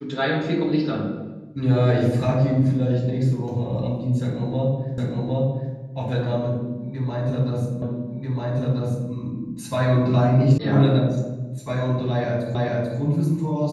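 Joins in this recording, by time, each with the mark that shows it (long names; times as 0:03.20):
0:04.98: the same again, the last 0.76 s
0:07.82: the same again, the last 1.29 s
0:10.58: cut off before it has died away
0:12.55: the same again, the last 0.44 s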